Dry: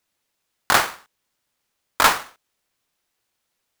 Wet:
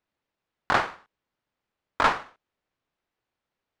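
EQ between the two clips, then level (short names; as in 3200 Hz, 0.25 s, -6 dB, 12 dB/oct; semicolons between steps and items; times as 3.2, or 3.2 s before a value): tape spacing loss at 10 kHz 27 dB; -1.5 dB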